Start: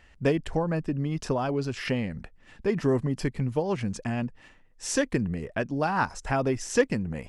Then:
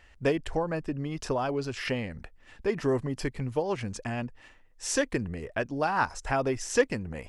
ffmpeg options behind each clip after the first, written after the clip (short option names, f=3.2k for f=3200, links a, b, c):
-af "equalizer=f=180:t=o:w=1.2:g=-7.5"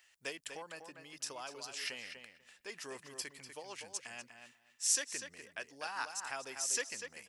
-filter_complex "[0:a]aderivative,asplit=2[a][b];[b]adelay=245,lowpass=f=3.7k:p=1,volume=-7dB,asplit=2[c][d];[d]adelay=245,lowpass=f=3.7k:p=1,volume=0.16,asplit=2[e][f];[f]adelay=245,lowpass=f=3.7k:p=1,volume=0.16[g];[a][c][e][g]amix=inputs=4:normalize=0,volume=2.5dB"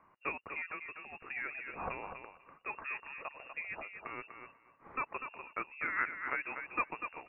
-af "lowpass=f=2.5k:t=q:w=0.5098,lowpass=f=2.5k:t=q:w=0.6013,lowpass=f=2.5k:t=q:w=0.9,lowpass=f=2.5k:t=q:w=2.563,afreqshift=-2900,volume=6dB"